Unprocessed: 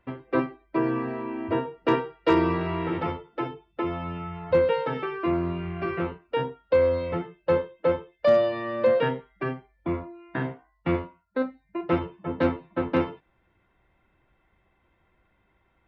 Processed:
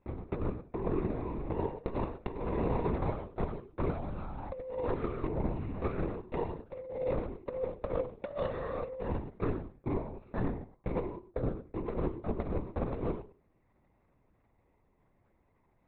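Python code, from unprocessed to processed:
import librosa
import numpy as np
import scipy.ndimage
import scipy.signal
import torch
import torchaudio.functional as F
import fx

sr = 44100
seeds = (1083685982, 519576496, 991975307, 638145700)

p1 = scipy.signal.medfilt(x, 15)
p2 = fx.peak_eq(p1, sr, hz=1500.0, db=-9.5, octaves=0.88)
p3 = fx.hum_notches(p2, sr, base_hz=50, count=10)
p4 = fx.echo_feedback(p3, sr, ms=100, feedback_pct=17, wet_db=-8)
p5 = fx.lpc_vocoder(p4, sr, seeds[0], excitation='whisper', order=10)
p6 = fx.level_steps(p5, sr, step_db=15)
p7 = p5 + (p6 * 10.0 ** (2.0 / 20.0))
p8 = fx.peak_eq(p7, sr, hz=3100.0, db=-11.5, octaves=0.34)
p9 = fx.over_compress(p8, sr, threshold_db=-23.0, ratio=-0.5)
y = p9 * 10.0 ** (-8.5 / 20.0)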